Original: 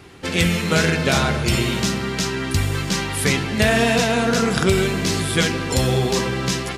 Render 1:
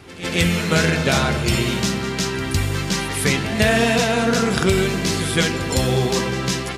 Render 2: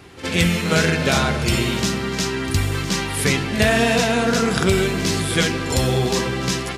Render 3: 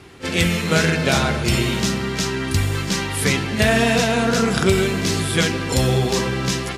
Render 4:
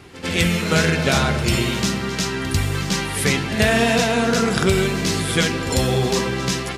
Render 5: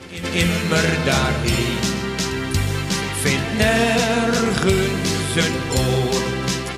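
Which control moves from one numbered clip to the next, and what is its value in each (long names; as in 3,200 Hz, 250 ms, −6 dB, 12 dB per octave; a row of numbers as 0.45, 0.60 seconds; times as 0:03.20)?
echo ahead of the sound, delay time: 158, 64, 31, 96, 232 milliseconds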